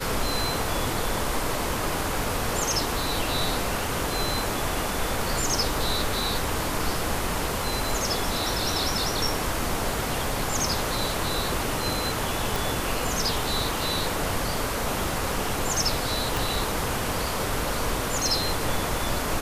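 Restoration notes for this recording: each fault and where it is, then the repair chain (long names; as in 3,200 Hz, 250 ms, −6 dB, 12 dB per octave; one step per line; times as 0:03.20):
0:12.56: click
0:16.37: click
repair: click removal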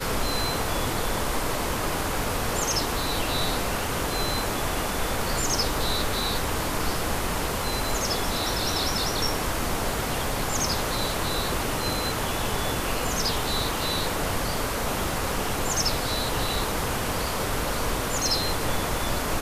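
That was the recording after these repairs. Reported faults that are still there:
0:16.37: click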